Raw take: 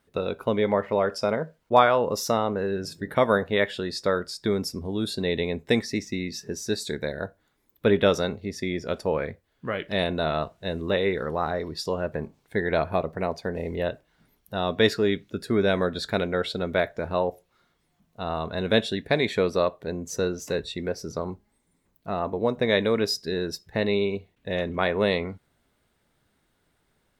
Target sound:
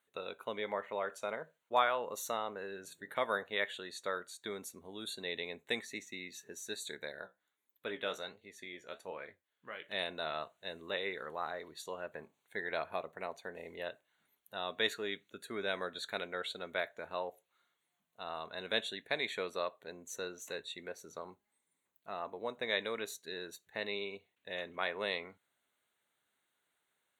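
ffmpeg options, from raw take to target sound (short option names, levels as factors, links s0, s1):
-filter_complex "[0:a]highpass=f=1300:p=1,asplit=3[s0][s1][s2];[s0]afade=t=out:st=7.21:d=0.02[s3];[s1]flanger=delay=7.7:depth=8.9:regen=58:speed=1.3:shape=triangular,afade=t=in:st=7.21:d=0.02,afade=t=out:st=9.82:d=0.02[s4];[s2]afade=t=in:st=9.82:d=0.02[s5];[s3][s4][s5]amix=inputs=3:normalize=0,asuperstop=centerf=5100:order=4:qfactor=2.8,volume=0.473"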